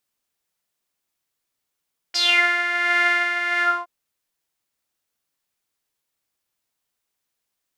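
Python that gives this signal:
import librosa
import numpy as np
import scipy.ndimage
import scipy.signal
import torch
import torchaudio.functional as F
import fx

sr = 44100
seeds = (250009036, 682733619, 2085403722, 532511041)

y = fx.sub_patch_tremolo(sr, seeds[0], note=77, wave='saw', wave2='saw', interval_st=0, detune_cents=16, level2_db=-9.0, sub_db=-5.0, noise_db=-30.0, kind='bandpass', cutoff_hz=930.0, q=7.2, env_oct=2.5, env_decay_s=0.27, env_sustain_pct=40, attack_ms=15.0, decay_s=0.88, sustain_db=-2, release_s=0.26, note_s=1.46, lfo_hz=1.4, tremolo_db=6.0)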